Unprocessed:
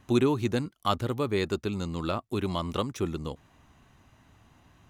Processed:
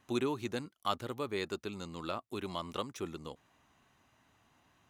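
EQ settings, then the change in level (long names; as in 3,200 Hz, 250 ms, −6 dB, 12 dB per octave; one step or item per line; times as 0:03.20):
low-shelf EQ 100 Hz −10.5 dB
low-shelf EQ 400 Hz −5 dB
−5.5 dB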